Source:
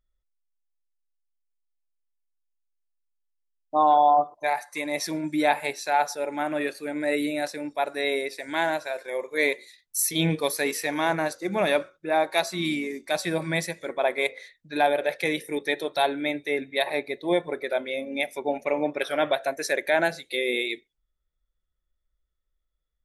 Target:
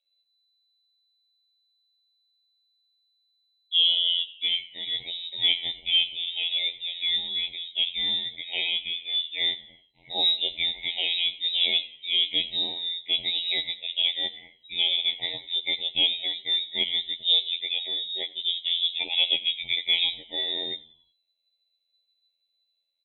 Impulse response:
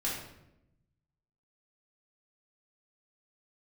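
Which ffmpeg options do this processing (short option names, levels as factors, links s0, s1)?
-filter_complex "[0:a]asplit=2[s0][s1];[s1]asoftclip=type=tanh:threshold=0.0562,volume=0.562[s2];[s0][s2]amix=inputs=2:normalize=0,afftfilt=real='hypot(re,im)*cos(PI*b)':imag='0':win_size=2048:overlap=0.75,asplit=5[s3][s4][s5][s6][s7];[s4]adelay=90,afreqshift=78,volume=0.1[s8];[s5]adelay=180,afreqshift=156,volume=0.049[s9];[s6]adelay=270,afreqshift=234,volume=0.024[s10];[s7]adelay=360,afreqshift=312,volume=0.0117[s11];[s3][s8][s9][s10][s11]amix=inputs=5:normalize=0,lowpass=f=3400:t=q:w=0.5098,lowpass=f=3400:t=q:w=0.6013,lowpass=f=3400:t=q:w=0.9,lowpass=f=3400:t=q:w=2.563,afreqshift=-4000,asuperstop=centerf=1400:order=12:qfactor=1.2,volume=1.12"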